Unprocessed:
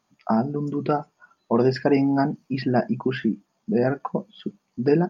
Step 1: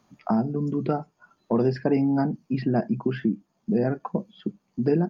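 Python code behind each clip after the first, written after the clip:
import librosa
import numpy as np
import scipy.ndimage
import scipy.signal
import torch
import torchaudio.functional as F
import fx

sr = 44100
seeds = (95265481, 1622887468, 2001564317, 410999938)

y = fx.low_shelf(x, sr, hz=480.0, db=8.0)
y = fx.band_squash(y, sr, depth_pct=40)
y = F.gain(torch.from_numpy(y), -7.5).numpy()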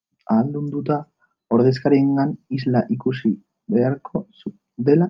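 y = fx.band_widen(x, sr, depth_pct=100)
y = F.gain(torch.from_numpy(y), 5.0).numpy()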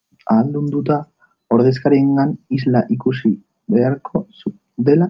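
y = fx.band_squash(x, sr, depth_pct=40)
y = F.gain(torch.from_numpy(y), 3.5).numpy()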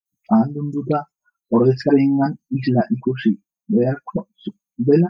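y = fx.bin_expand(x, sr, power=1.5)
y = fx.dispersion(y, sr, late='highs', ms=57.0, hz=910.0)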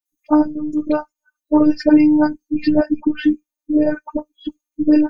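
y = fx.robotise(x, sr, hz=303.0)
y = F.gain(torch.from_numpy(y), 4.5).numpy()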